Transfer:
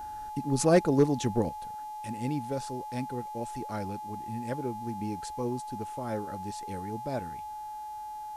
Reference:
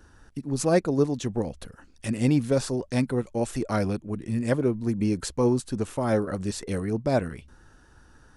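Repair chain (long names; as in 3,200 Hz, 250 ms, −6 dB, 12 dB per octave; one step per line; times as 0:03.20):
clipped peaks rebuilt −13 dBFS
hum removal 404.7 Hz, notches 36
notch filter 850 Hz, Q 30
level 0 dB, from 0:01.49 +10.5 dB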